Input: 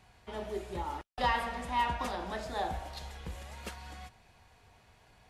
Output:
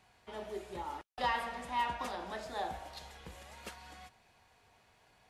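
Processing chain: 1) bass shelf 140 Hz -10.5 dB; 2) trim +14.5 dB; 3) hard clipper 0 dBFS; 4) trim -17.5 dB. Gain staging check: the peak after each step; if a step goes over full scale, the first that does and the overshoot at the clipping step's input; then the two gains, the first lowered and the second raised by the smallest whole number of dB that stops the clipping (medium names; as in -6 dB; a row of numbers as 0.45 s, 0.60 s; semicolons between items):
-17.5 dBFS, -3.0 dBFS, -3.0 dBFS, -20.5 dBFS; nothing clips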